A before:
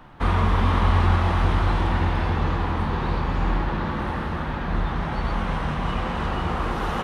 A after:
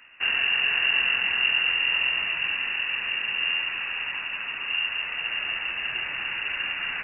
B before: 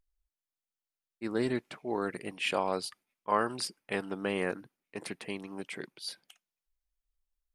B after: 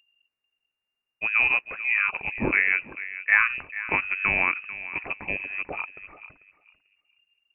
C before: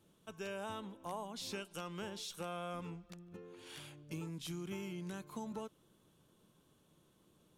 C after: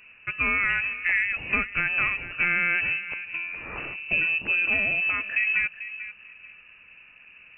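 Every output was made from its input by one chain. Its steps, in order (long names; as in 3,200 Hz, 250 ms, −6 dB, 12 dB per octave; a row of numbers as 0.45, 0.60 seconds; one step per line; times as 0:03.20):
feedback echo with a low-pass in the loop 442 ms, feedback 23%, low-pass 1,100 Hz, level −12 dB
voice inversion scrambler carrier 2,800 Hz
loudness normalisation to −24 LKFS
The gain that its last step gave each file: −6.0, +8.5, +19.0 decibels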